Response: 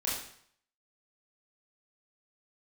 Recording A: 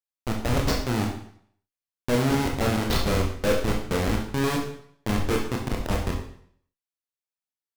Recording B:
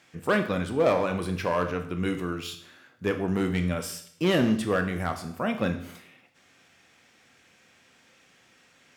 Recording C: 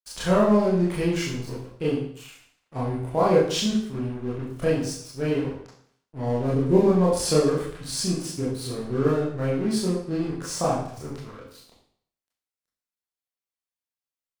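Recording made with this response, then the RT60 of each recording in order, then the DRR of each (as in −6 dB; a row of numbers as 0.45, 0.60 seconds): C; 0.60, 0.60, 0.60 seconds; −0.5, 6.5, −7.0 decibels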